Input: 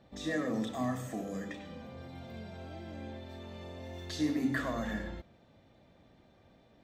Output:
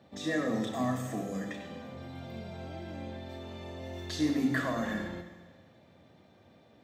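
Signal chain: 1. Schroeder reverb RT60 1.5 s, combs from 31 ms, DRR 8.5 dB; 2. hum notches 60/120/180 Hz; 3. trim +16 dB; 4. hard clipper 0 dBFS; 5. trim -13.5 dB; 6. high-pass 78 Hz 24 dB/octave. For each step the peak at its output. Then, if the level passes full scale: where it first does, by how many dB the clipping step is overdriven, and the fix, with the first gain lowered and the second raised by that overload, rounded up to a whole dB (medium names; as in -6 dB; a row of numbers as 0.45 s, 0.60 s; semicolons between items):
-21.0 dBFS, -21.0 dBFS, -5.0 dBFS, -5.0 dBFS, -18.5 dBFS, -18.0 dBFS; nothing clips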